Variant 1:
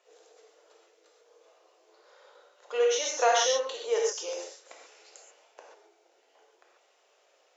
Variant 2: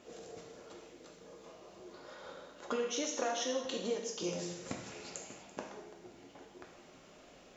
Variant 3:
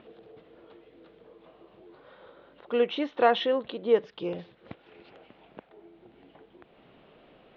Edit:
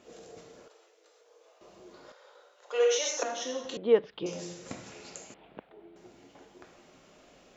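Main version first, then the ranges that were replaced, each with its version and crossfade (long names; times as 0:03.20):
2
0:00.68–0:01.61: punch in from 1
0:02.12–0:03.23: punch in from 1
0:03.77–0:04.26: punch in from 3
0:05.34–0:05.96: punch in from 3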